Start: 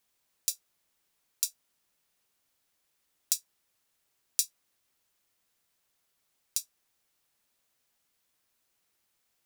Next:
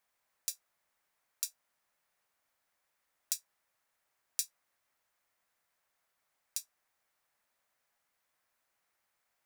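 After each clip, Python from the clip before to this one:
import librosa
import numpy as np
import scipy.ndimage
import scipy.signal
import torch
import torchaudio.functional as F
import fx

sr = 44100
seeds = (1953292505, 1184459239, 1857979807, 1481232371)

y = fx.band_shelf(x, sr, hz=1100.0, db=8.5, octaves=2.3)
y = y * librosa.db_to_amplitude(-6.5)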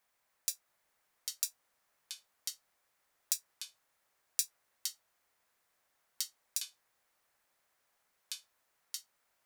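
y = fx.echo_pitch(x, sr, ms=673, semitones=-4, count=2, db_per_echo=-6.0)
y = y * librosa.db_to_amplitude(2.0)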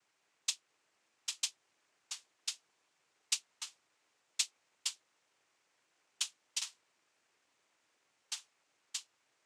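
y = fx.noise_vocoder(x, sr, seeds[0], bands=4)
y = y * librosa.db_to_amplitude(2.5)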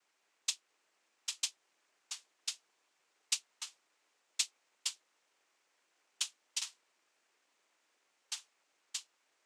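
y = scipy.signal.sosfilt(scipy.signal.butter(2, 250.0, 'highpass', fs=sr, output='sos'), x)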